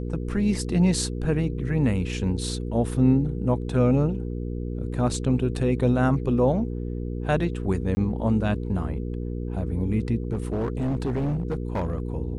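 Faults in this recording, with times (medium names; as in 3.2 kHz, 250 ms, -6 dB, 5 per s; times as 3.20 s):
hum 60 Hz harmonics 8 -30 dBFS
7.95–7.97 s: dropout 20 ms
10.32–12.00 s: clipped -22 dBFS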